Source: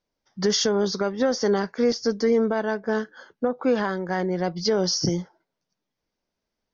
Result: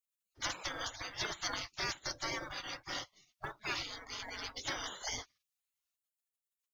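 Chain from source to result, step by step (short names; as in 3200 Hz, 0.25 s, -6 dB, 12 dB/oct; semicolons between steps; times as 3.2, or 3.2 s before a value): spectral gate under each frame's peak -30 dB weak; short-mantissa float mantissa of 4-bit; gain +6 dB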